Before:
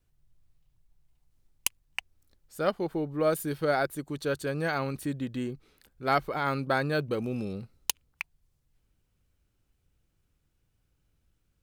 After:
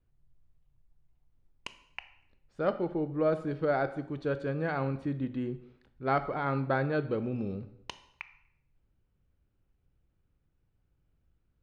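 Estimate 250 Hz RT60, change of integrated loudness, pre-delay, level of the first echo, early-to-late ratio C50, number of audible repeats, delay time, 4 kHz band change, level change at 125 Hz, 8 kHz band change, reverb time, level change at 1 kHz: 0.70 s, −1.0 dB, 7 ms, no echo audible, 13.5 dB, no echo audible, no echo audible, −10.0 dB, +0.5 dB, below −20 dB, 0.70 s, −2.5 dB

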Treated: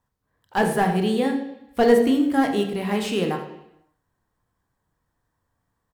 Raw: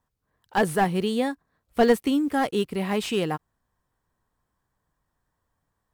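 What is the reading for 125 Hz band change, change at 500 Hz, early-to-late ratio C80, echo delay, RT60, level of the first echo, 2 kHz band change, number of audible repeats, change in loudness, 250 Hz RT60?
+3.0 dB, +3.5 dB, 9.0 dB, 80 ms, 0.80 s, −12.5 dB, +2.0 dB, 1, +3.0 dB, 0.85 s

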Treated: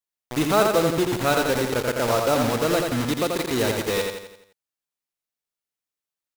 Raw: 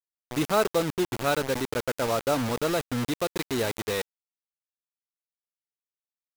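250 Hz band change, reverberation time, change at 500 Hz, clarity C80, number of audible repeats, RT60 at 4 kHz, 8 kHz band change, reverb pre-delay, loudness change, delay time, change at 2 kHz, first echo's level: +5.0 dB, no reverb audible, +5.5 dB, no reverb audible, 5, no reverb audible, +5.5 dB, no reverb audible, +5.0 dB, 85 ms, +5.5 dB, −4.0 dB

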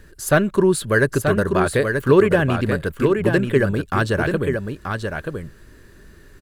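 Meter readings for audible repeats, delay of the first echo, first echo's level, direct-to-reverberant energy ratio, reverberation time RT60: 1, 932 ms, −5.5 dB, no reverb audible, no reverb audible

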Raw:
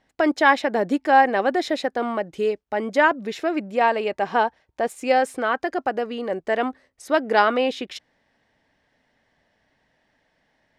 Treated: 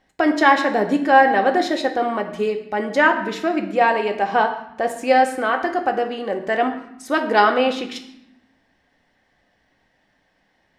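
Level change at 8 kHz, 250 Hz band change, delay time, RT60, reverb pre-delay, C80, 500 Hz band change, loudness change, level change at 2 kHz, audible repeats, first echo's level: +2.5 dB, +3.5 dB, no echo audible, 0.75 s, 3 ms, 12.0 dB, +2.0 dB, +3.0 dB, +3.5 dB, no echo audible, no echo audible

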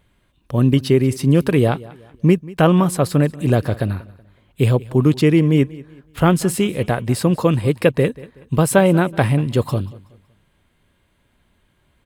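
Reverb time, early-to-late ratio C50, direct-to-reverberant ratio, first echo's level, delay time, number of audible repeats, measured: no reverb audible, no reverb audible, no reverb audible, −20.5 dB, 187 ms, 2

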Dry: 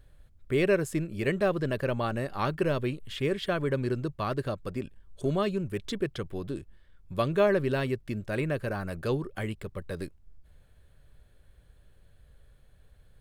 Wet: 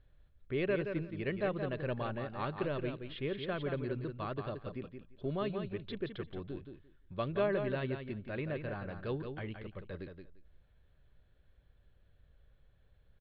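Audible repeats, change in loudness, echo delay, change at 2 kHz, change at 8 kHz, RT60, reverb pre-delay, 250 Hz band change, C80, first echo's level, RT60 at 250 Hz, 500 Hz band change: 2, −7.5 dB, 173 ms, −7.5 dB, below −30 dB, no reverb audible, no reverb audible, −7.5 dB, no reverb audible, −7.0 dB, no reverb audible, −7.5 dB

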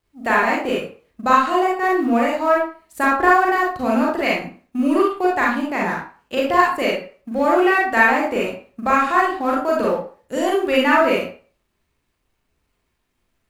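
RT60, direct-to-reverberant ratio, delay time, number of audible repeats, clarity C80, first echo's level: 0.40 s, −4.0 dB, no echo audible, no echo audible, 8.5 dB, no echo audible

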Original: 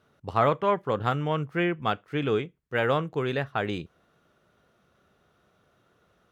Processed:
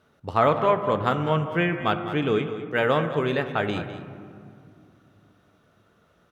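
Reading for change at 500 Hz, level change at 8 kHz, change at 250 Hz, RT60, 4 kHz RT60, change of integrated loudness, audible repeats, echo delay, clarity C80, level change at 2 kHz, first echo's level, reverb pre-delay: +3.5 dB, can't be measured, +3.5 dB, 2.4 s, 1.4 s, +3.5 dB, 1, 204 ms, 9.0 dB, +3.5 dB, −12.5 dB, 3 ms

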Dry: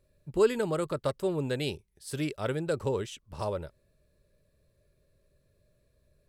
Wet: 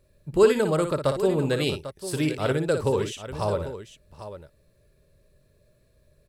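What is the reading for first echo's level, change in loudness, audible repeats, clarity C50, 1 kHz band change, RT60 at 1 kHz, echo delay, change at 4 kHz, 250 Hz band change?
−8.0 dB, +6.5 dB, 2, no reverb audible, +7.0 dB, no reverb audible, 58 ms, +7.0 dB, +7.0 dB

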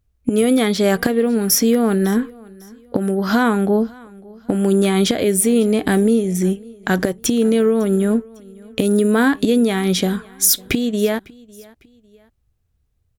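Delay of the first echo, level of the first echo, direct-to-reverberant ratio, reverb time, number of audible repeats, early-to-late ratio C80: 552 ms, −24.0 dB, no reverb audible, no reverb audible, 2, no reverb audible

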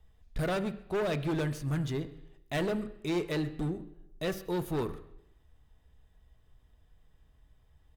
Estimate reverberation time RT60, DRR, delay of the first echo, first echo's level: 0.85 s, 9.5 dB, 133 ms, −23.5 dB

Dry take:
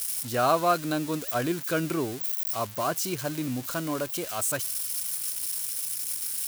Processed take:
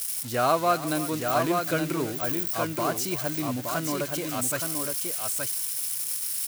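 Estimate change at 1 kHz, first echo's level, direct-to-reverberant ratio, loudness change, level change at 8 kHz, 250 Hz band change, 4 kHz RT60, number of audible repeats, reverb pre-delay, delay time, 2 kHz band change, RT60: +1.5 dB, −15.5 dB, no reverb audible, +1.5 dB, +1.0 dB, +1.0 dB, no reverb audible, 2, no reverb audible, 330 ms, +2.0 dB, no reverb audible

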